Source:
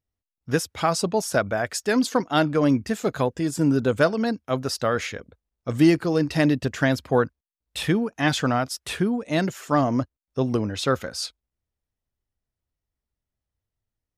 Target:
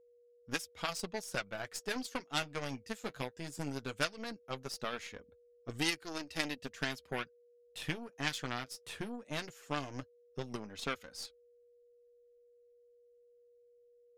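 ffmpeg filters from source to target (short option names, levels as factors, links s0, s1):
-filter_complex "[0:a]aeval=exprs='0.473*(cos(1*acos(clip(val(0)/0.473,-1,1)))-cos(1*PI/2))+0.119*(cos(3*acos(clip(val(0)/0.473,-1,1)))-cos(3*PI/2))+0.00944*(cos(4*acos(clip(val(0)/0.473,-1,1)))-cos(4*PI/2))+0.00531*(cos(7*acos(clip(val(0)/0.473,-1,1)))-cos(7*PI/2))+0.00376*(cos(8*acos(clip(val(0)/0.473,-1,1)))-cos(8*PI/2))':c=same,acrossover=split=1800[s0][s1];[s0]acompressor=threshold=0.0141:ratio=5[s2];[s2][s1]amix=inputs=2:normalize=0,flanger=delay=2.4:depth=6.6:regen=-40:speed=0.17:shape=triangular,aeval=exprs='val(0)+0.000501*sin(2*PI*480*n/s)':c=same,volume=1.5"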